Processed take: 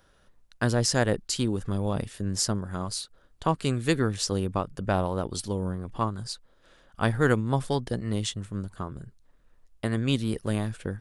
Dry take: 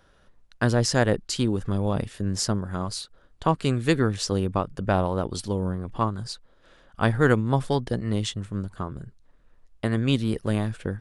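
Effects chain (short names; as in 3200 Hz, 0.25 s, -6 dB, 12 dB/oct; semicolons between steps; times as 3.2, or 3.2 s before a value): high shelf 6600 Hz +8 dB; gain -3 dB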